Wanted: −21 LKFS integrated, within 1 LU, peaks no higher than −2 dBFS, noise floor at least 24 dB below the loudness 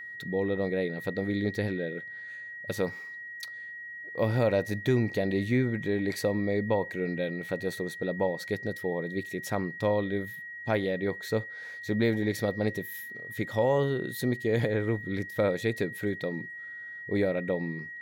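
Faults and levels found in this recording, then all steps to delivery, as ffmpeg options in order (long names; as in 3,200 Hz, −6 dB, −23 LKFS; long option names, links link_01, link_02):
interfering tone 1,900 Hz; level of the tone −39 dBFS; integrated loudness −30.5 LKFS; sample peak −15.0 dBFS; target loudness −21.0 LKFS
→ -af "bandreject=frequency=1900:width=30"
-af "volume=9.5dB"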